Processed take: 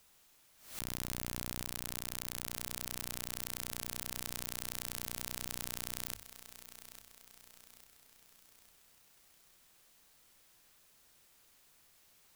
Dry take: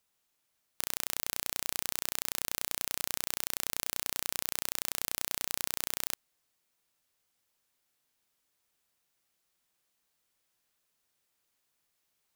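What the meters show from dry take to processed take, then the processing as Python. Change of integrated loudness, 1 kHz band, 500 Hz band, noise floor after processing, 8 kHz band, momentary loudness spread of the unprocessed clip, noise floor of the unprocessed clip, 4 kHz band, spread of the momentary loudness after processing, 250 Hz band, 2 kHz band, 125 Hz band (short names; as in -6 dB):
-6.5 dB, -5.5 dB, -3.5 dB, -66 dBFS, -6.0 dB, 1 LU, -79 dBFS, -6.0 dB, 18 LU, +2.0 dB, -6.0 dB, +5.0 dB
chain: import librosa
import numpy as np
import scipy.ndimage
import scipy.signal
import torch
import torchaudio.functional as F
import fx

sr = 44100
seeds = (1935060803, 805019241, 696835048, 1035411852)

p1 = fx.low_shelf(x, sr, hz=75.0, db=9.0)
p2 = fx.hum_notches(p1, sr, base_hz=50, count=2)
p3 = fx.over_compress(p2, sr, threshold_db=-42.0, ratio=-0.5)
p4 = p3 + fx.echo_feedback(p3, sr, ms=851, feedback_pct=47, wet_db=-13, dry=0)
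p5 = fx.pre_swell(p4, sr, db_per_s=110.0)
y = p5 * 10.0 ** (3.0 / 20.0)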